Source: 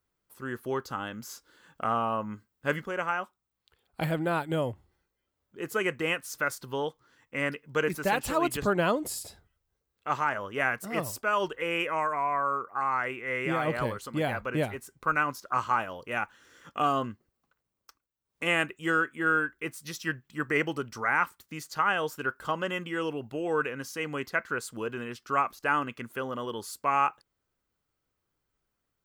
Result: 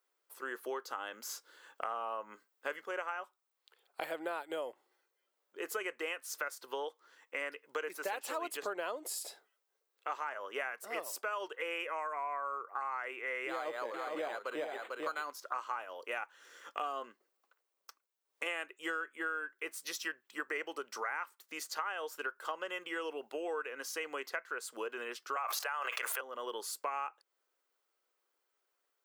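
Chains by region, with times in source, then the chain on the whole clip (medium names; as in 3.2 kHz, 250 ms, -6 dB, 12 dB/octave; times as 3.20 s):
13.49–15.31 s: delay 447 ms -6.5 dB + decimation joined by straight lines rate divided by 8×
25.36–26.21 s: high-pass 550 Hz 24 dB/octave + level flattener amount 100%
whole clip: high-pass 400 Hz 24 dB/octave; compression 5:1, threshold -37 dBFS; trim +1 dB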